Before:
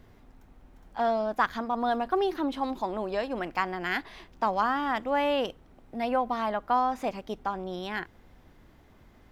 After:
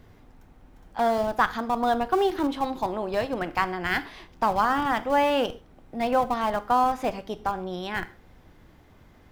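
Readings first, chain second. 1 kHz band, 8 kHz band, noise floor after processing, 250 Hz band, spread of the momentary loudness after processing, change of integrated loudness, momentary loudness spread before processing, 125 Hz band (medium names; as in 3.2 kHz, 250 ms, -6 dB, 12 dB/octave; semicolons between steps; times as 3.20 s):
+4.0 dB, no reading, -55 dBFS, +3.0 dB, 9 LU, +3.5 dB, 9 LU, +5.5 dB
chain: in parallel at -9.5 dB: Schmitt trigger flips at -26 dBFS; on the sum: gated-style reverb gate 160 ms falling, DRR 12 dB; trim +2.5 dB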